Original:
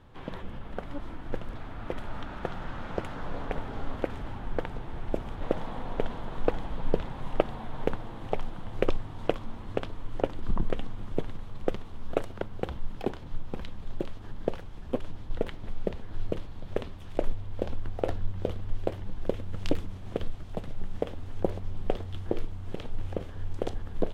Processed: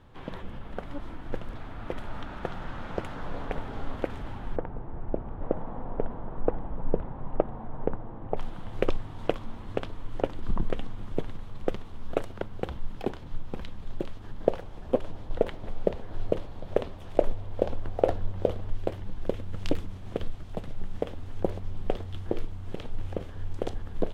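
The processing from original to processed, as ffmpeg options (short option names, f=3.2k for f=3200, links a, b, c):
-filter_complex "[0:a]asettb=1/sr,asplit=3[a][b][c];[a]atrim=end=4.564[d];[b]atrim=start=4.56:end=8.37,asetpts=PTS-STARTPTS,afade=t=in:d=0.004:c=qsin,afade=t=out:st=3.806:d=0.004:c=qsin,lowpass=1.1k[e];[c]atrim=start=8.366[f];[d][e]acrossfade=d=0.004:c1=hsin:c2=qsin[g];[g][f]acrossfade=d=0.004:c1=qsin:c2=hsin,asettb=1/sr,asplit=3[h][i][j];[h]atrim=end=14.404[k];[i]atrim=start=14.4:end=18.7,asetpts=PTS-STARTPTS,afade=t=in:d=0.004:c=qsin,afade=t=out:st=4.296:d=0.004:c=qsin,equalizer=f=590:t=o:w=1.4:g=8[l];[j]atrim=start=18.696[m];[k][l]acrossfade=d=0.004:c1=hsin:c2=qsin[n];[n][m]acrossfade=d=0.004:c1=qsin:c2=hsin"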